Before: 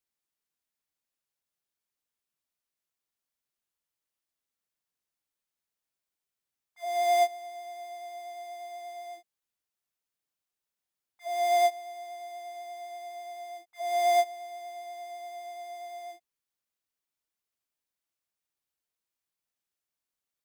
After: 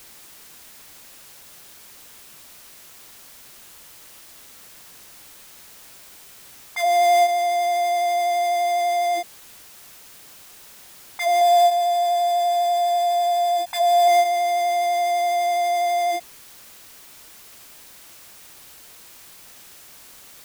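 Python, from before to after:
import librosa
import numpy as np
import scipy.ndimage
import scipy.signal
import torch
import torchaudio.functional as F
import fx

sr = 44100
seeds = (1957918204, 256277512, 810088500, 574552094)

y = fx.comb(x, sr, ms=1.2, depth=0.68, at=(11.41, 14.08))
y = fx.env_flatten(y, sr, amount_pct=70)
y = y * 10.0 ** (3.5 / 20.0)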